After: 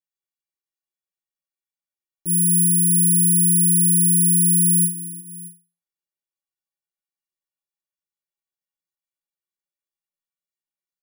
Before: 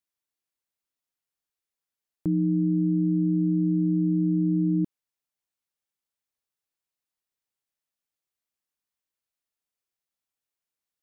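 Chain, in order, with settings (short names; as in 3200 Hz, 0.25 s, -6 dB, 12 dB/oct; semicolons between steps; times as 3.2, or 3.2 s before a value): metallic resonator 170 Hz, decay 0.33 s, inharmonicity 0.03; tapped delay 65/102/235/357/624 ms -17/-11/-19.5/-15/-18 dB; careless resampling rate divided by 4×, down filtered, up zero stuff; gain +4 dB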